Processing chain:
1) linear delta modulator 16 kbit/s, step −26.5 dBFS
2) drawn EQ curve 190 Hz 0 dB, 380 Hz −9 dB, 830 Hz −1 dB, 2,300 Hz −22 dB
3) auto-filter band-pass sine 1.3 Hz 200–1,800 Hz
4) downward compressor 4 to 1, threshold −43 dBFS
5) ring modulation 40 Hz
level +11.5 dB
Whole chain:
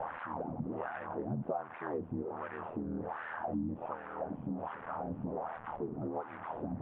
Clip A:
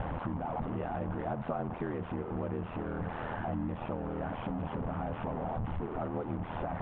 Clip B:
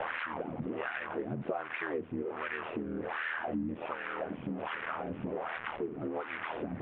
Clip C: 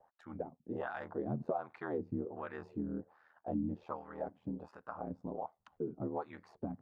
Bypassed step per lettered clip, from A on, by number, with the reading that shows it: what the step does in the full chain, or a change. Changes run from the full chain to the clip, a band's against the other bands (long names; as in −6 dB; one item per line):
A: 3, 125 Hz band +5.0 dB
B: 2, change in integrated loudness +2.5 LU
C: 1, 1 kHz band −3.0 dB